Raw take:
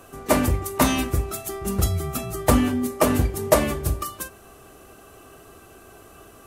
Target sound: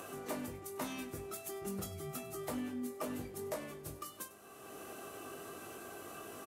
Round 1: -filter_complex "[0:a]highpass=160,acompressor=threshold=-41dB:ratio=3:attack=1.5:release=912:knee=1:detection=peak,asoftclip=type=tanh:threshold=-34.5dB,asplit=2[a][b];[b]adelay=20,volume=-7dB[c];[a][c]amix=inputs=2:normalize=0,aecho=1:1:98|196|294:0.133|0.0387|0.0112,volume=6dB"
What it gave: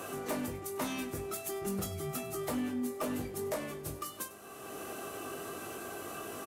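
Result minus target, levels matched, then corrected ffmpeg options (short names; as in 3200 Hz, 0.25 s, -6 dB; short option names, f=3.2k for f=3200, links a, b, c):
compressor: peak gain reduction -6.5 dB
-filter_complex "[0:a]highpass=160,acompressor=threshold=-50.5dB:ratio=3:attack=1.5:release=912:knee=1:detection=peak,asoftclip=type=tanh:threshold=-34.5dB,asplit=2[a][b];[b]adelay=20,volume=-7dB[c];[a][c]amix=inputs=2:normalize=0,aecho=1:1:98|196|294:0.133|0.0387|0.0112,volume=6dB"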